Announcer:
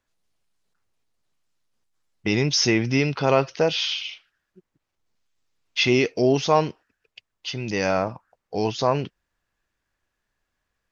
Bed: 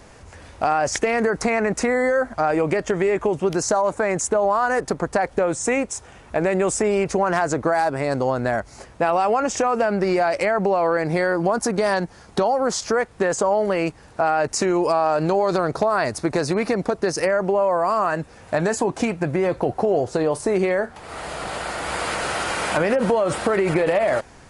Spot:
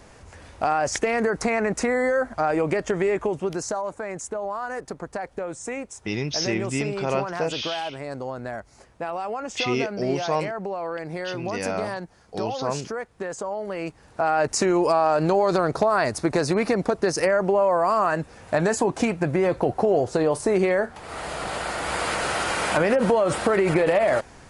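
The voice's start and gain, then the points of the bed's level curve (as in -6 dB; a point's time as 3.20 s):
3.80 s, -6.0 dB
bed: 3.11 s -2.5 dB
4.02 s -10.5 dB
13.64 s -10.5 dB
14.42 s -0.5 dB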